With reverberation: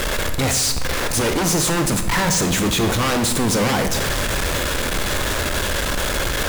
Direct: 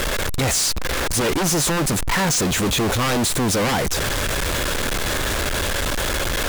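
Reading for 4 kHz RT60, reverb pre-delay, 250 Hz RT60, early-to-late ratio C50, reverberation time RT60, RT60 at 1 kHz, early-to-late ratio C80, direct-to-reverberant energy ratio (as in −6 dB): 0.80 s, 23 ms, 1.5 s, 8.0 dB, 1.2 s, 1.1 s, 10.5 dB, 6.5 dB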